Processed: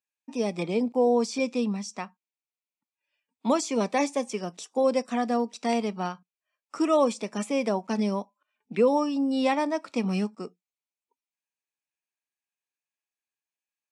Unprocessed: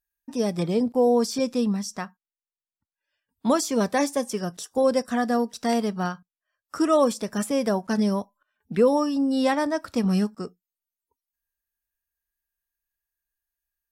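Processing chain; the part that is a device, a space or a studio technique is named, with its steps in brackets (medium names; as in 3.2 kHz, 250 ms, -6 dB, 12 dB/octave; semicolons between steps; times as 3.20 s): television speaker (cabinet simulation 190–8300 Hz, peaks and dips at 880 Hz +3 dB, 1.6 kHz -8 dB, 2.4 kHz +10 dB, 5.1 kHz -3 dB); trim -2.5 dB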